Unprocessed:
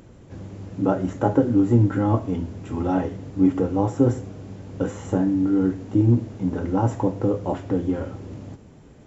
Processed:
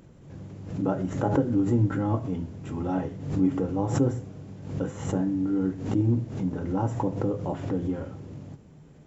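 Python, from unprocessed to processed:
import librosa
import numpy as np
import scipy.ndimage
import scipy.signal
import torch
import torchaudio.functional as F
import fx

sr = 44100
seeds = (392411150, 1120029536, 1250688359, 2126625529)

y = fx.peak_eq(x, sr, hz=150.0, db=9.5, octaves=0.39)
y = fx.hum_notches(y, sr, base_hz=60, count=2)
y = fx.pre_swell(y, sr, db_per_s=81.0)
y = y * 10.0 ** (-6.5 / 20.0)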